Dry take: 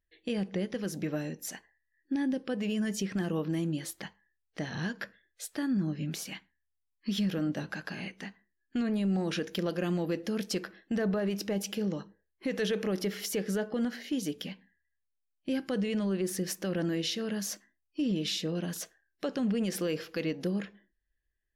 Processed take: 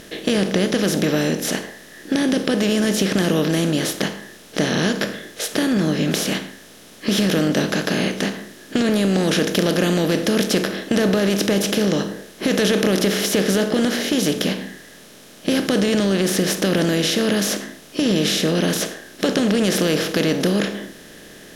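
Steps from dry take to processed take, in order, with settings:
compressor on every frequency bin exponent 0.4
level +7.5 dB

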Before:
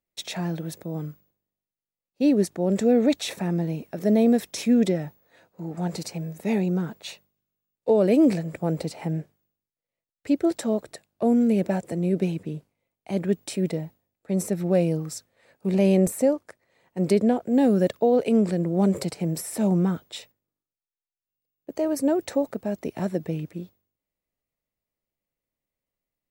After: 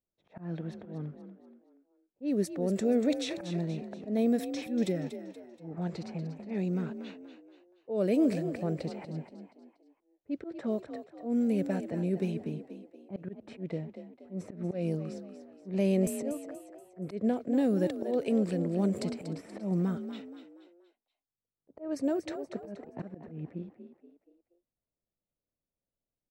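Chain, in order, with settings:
in parallel at −2 dB: downward compressor, threshold −33 dBFS, peak gain reduction 17 dB
on the sum: dynamic equaliser 850 Hz, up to −6 dB, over −43 dBFS, Q 3.8
volume swells 148 ms
low-pass that shuts in the quiet parts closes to 760 Hz, open at −17.5 dBFS
on a send: echo with shifted repeats 238 ms, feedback 42%, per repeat +43 Hz, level −10.5 dB
on the sum: level −8.5 dB

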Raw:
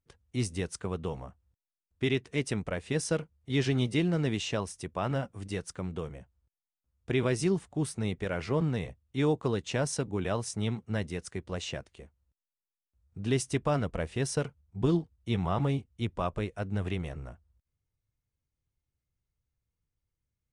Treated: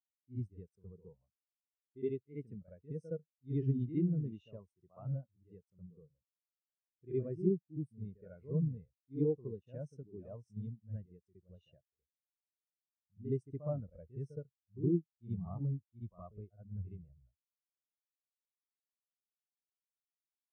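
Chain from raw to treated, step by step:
backwards echo 67 ms −5.5 dB
every bin expanded away from the loudest bin 2.5 to 1
level −5.5 dB

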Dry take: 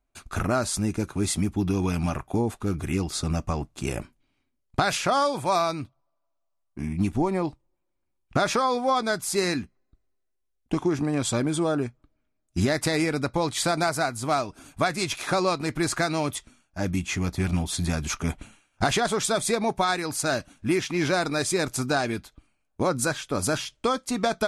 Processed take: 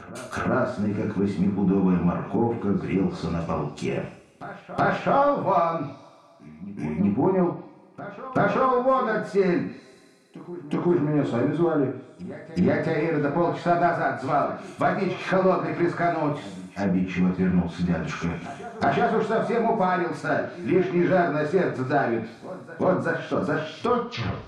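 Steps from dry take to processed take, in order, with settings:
turntable brake at the end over 0.59 s
high-pass filter 140 Hz 12 dB per octave
coupled-rooms reverb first 0.49 s, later 2.4 s, from −26 dB, DRR −2 dB
soft clipping −10.5 dBFS, distortion −21 dB
treble cut that deepens with the level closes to 1,500 Hz, closed at −21 dBFS
on a send: backwards echo 375 ms −15.5 dB

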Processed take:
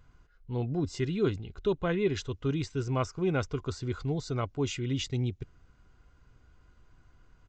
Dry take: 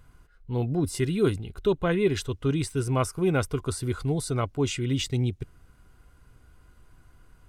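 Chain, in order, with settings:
downsampling to 16,000 Hz
level −4.5 dB

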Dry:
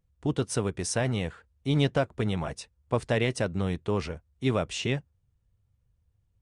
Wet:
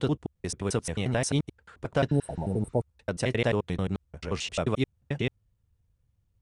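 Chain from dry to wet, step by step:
slices reordered back to front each 88 ms, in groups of 5
healed spectral selection 0:02.12–0:02.79, 960–8,000 Hz both

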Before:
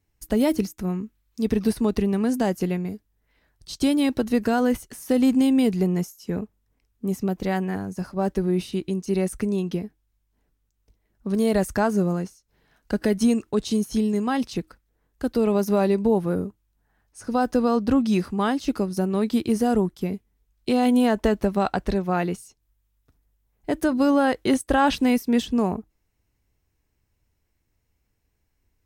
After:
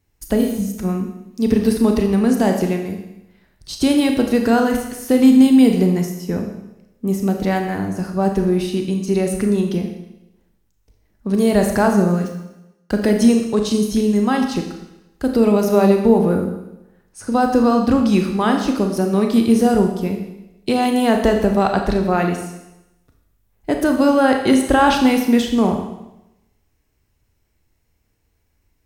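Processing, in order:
0:00.43–0:00.67: healed spectral selection 220–12,000 Hz both
0:12.11–0:13.07: centre clipping without the shift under −43.5 dBFS
four-comb reverb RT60 0.91 s, combs from 27 ms, DRR 3.5 dB
level +5 dB

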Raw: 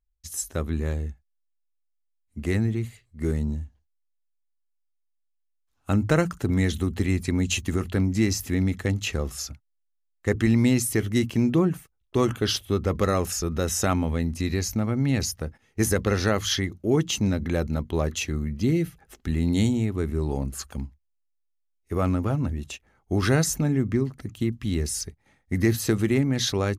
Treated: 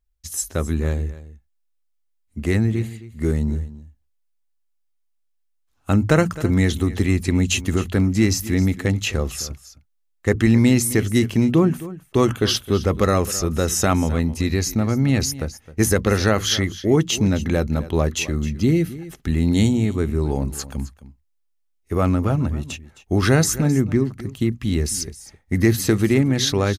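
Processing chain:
single-tap delay 263 ms −16.5 dB
level +5 dB

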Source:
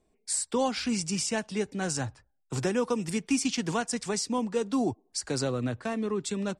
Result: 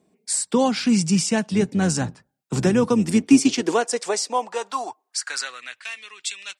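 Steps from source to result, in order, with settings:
0:01.50–0:03.63: sub-octave generator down 1 octave, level −5 dB
high-pass filter sweep 170 Hz → 2,500 Hz, 0:02.83–0:05.87
level +6 dB

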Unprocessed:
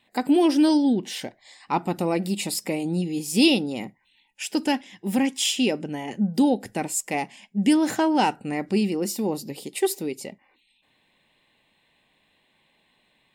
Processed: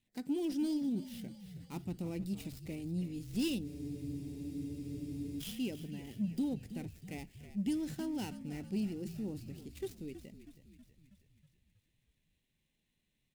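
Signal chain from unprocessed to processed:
gap after every zero crossing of 0.075 ms
guitar amp tone stack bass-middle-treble 10-0-1
echo with shifted repeats 321 ms, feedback 62%, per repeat −47 Hz, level −13 dB
in parallel at −5.5 dB: soft clipping −35.5 dBFS, distortion −16 dB
on the sum: frozen spectrum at 0:03.66, 1.73 s
level +1.5 dB

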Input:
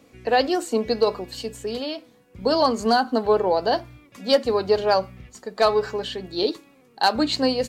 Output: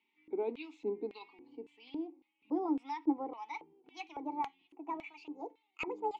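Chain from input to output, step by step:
gliding playback speed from 80% → 168%
formant filter u
auto-filter band-pass square 1.8 Hz 460–3,000 Hz
level +5.5 dB

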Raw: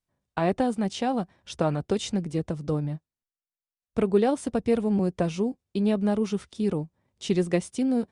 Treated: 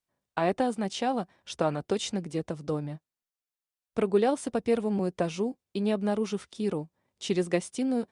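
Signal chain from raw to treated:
low-shelf EQ 170 Hz −12 dB

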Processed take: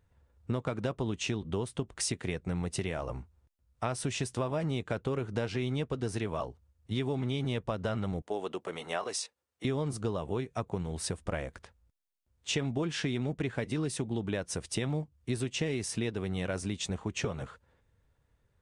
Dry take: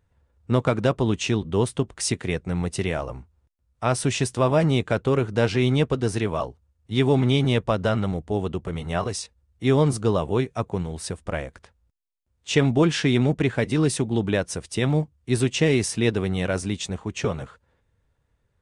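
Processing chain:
0:08.22–0:09.65: high-pass filter 420 Hz 12 dB per octave
downward compressor, threshold −28 dBFS, peak gain reduction 13.5 dB
level −1.5 dB

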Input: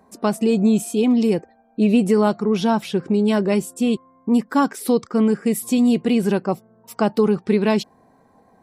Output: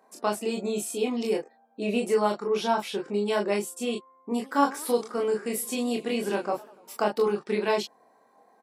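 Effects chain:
high-pass filter 420 Hz 12 dB per octave
ambience of single reflections 25 ms −3 dB, 39 ms −5.5 dB
0:04.29–0:07.10: feedback echo with a swinging delay time 98 ms, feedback 62%, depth 208 cents, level −21 dB
level −5.5 dB

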